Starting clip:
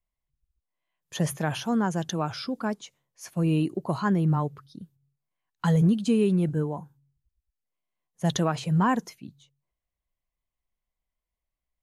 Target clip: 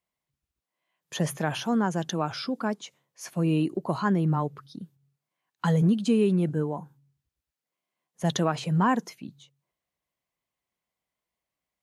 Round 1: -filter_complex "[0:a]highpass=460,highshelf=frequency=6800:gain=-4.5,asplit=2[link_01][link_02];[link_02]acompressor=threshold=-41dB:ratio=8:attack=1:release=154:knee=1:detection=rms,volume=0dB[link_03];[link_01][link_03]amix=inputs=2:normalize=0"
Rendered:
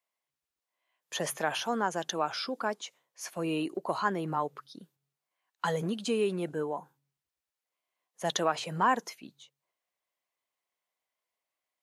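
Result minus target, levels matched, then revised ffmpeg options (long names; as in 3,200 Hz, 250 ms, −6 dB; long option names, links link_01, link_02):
125 Hz band −9.0 dB
-filter_complex "[0:a]highpass=150,highshelf=frequency=6800:gain=-4.5,asplit=2[link_01][link_02];[link_02]acompressor=threshold=-41dB:ratio=8:attack=1:release=154:knee=1:detection=rms,volume=0dB[link_03];[link_01][link_03]amix=inputs=2:normalize=0"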